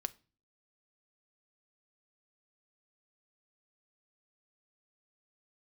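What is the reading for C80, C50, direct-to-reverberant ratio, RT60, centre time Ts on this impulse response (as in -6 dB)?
28.0 dB, 22.5 dB, 12.0 dB, 0.35 s, 3 ms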